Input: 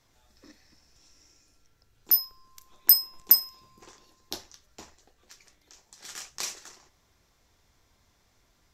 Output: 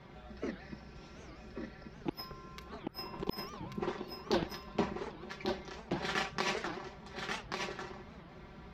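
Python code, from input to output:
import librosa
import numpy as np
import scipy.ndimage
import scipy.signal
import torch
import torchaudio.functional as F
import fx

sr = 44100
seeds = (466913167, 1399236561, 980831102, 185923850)

y = scipy.signal.sosfilt(scipy.signal.butter(2, 74.0, 'highpass', fs=sr, output='sos'), x)
y = fx.low_shelf(y, sr, hz=440.0, db=6.5)
y = y + 0.75 * np.pad(y, (int(5.2 * sr / 1000.0), 0))[:len(y)]
y = fx.over_compress(y, sr, threshold_db=-33.0, ratio=-0.5)
y = fx.air_absorb(y, sr, metres=370.0)
y = y + 10.0 ** (-4.5 / 20.0) * np.pad(y, (int(1136 * sr / 1000.0), 0))[:len(y)]
y = fx.record_warp(y, sr, rpm=78.0, depth_cents=250.0)
y = y * librosa.db_to_amplitude(5.0)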